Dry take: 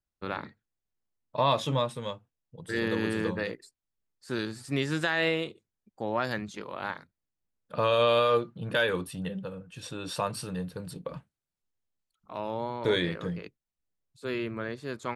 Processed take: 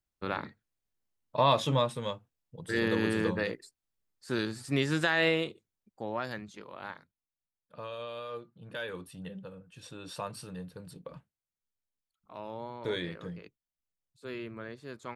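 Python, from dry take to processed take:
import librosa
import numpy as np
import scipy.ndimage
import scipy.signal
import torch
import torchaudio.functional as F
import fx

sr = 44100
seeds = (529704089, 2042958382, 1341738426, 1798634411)

y = fx.gain(x, sr, db=fx.line((5.41, 0.5), (6.45, -7.5), (6.95, -7.5), (8.12, -18.0), (9.32, -7.5)))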